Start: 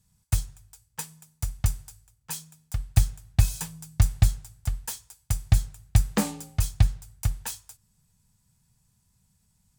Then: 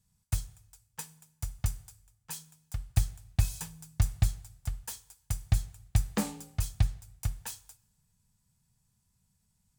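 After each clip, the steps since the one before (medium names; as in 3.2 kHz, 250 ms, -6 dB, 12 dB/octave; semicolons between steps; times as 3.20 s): two-slope reverb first 0.71 s, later 1.9 s, DRR 17.5 dB; trim -6 dB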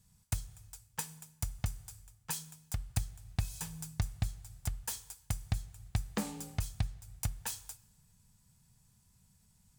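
compression 3:1, threshold -41 dBFS, peak gain reduction 16.5 dB; trim +6.5 dB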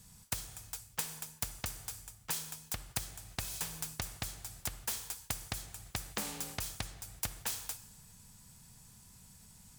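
spectrum-flattening compressor 2:1; trim +2.5 dB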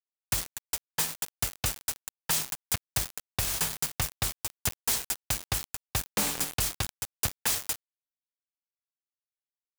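companded quantiser 2-bit; trim +2.5 dB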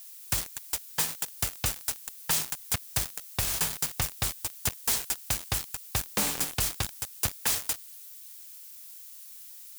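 zero-crossing glitches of -37.5 dBFS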